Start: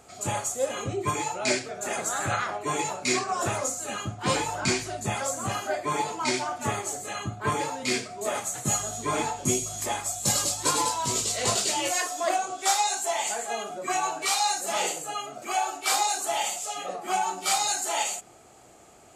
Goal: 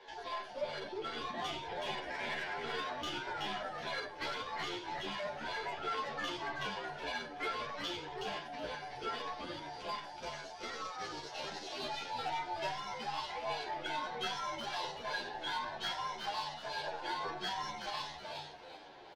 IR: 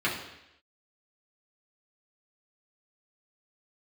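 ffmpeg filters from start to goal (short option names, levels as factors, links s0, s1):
-filter_complex "[0:a]bandreject=f=960:w=5.2,acompressor=threshold=0.0141:ratio=5,highpass=f=390:t=q:w=0.5412,highpass=f=390:t=q:w=1.307,lowpass=f=3400:t=q:w=0.5176,lowpass=f=3400:t=q:w=0.7071,lowpass=f=3400:t=q:w=1.932,afreqshift=-140,aeval=exprs='0.0355*(cos(1*acos(clip(val(0)/0.0355,-1,1)))-cos(1*PI/2))+0.002*(cos(6*acos(clip(val(0)/0.0355,-1,1)))-cos(6*PI/2))':c=same,asetrate=66075,aresample=44100,atempo=0.66742,asplit=5[s0][s1][s2][s3][s4];[s1]adelay=374,afreqshift=-150,volume=0.631[s5];[s2]adelay=748,afreqshift=-300,volume=0.195[s6];[s3]adelay=1122,afreqshift=-450,volume=0.061[s7];[s4]adelay=1496,afreqshift=-600,volume=0.0188[s8];[s0][s5][s6][s7][s8]amix=inputs=5:normalize=0,asplit=2[s9][s10];[1:a]atrim=start_sample=2205,asetrate=83790,aresample=44100[s11];[s10][s11]afir=irnorm=-1:irlink=0,volume=0.15[s12];[s9][s12]amix=inputs=2:normalize=0,asplit=2[s13][s14];[s14]adelay=10.2,afreqshift=-2.6[s15];[s13][s15]amix=inputs=2:normalize=1,volume=1.41"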